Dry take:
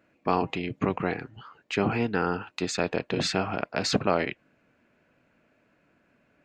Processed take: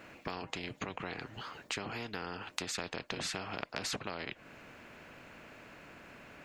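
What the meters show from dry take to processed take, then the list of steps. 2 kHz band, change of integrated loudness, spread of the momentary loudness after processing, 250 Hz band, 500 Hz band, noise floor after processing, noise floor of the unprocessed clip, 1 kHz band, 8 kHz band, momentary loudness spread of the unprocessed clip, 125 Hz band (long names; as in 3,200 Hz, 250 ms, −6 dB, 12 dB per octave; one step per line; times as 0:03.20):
−8.0 dB, −11.5 dB, 15 LU, −15.5 dB, −15.5 dB, −62 dBFS, −68 dBFS, −12.5 dB, −4.5 dB, 6 LU, −14.0 dB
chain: downward compressor 6 to 1, threshold −36 dBFS, peak gain reduction 17.5 dB
every bin compressed towards the loudest bin 2 to 1
level +5.5 dB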